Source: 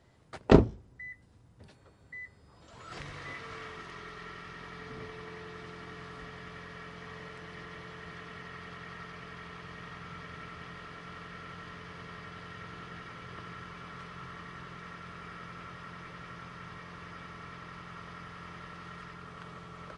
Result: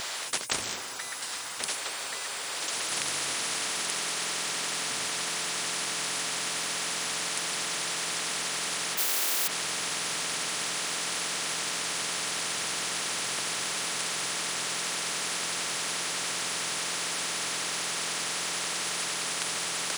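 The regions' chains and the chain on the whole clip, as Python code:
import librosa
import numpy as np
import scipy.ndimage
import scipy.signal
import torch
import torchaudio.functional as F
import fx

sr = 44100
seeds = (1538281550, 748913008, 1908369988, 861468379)

y = fx.spec_flatten(x, sr, power=0.32, at=(8.97, 9.46), fade=0.02)
y = fx.highpass(y, sr, hz=260.0, slope=12, at=(8.97, 9.46), fade=0.02)
y = scipy.signal.sosfilt(scipy.signal.butter(2, 1200.0, 'highpass', fs=sr, output='sos'), y)
y = fx.high_shelf(y, sr, hz=3200.0, db=9.5)
y = fx.spectral_comp(y, sr, ratio=10.0)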